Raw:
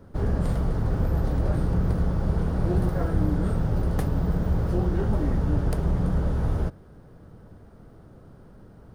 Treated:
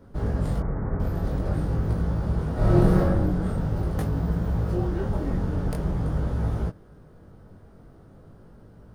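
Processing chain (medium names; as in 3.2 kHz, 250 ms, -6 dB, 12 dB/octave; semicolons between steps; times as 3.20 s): 0.60–1.00 s: steep low-pass 2.2 kHz 72 dB/octave; 2.53–2.98 s: reverb throw, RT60 1.3 s, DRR -7.5 dB; chorus 0.46 Hz, delay 18 ms, depth 4.1 ms; trim +2 dB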